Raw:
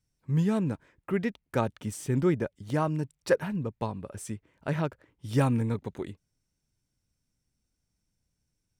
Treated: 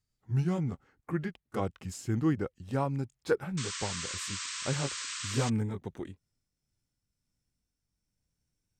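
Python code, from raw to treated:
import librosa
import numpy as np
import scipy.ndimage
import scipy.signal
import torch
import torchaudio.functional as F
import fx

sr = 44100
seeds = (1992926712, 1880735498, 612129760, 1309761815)

y = fx.pitch_glide(x, sr, semitones=-3.0, runs='ending unshifted')
y = fx.spec_paint(y, sr, seeds[0], shape='noise', start_s=3.57, length_s=1.93, low_hz=970.0, high_hz=8600.0, level_db=-36.0)
y = y * librosa.db_to_amplitude(-2.5)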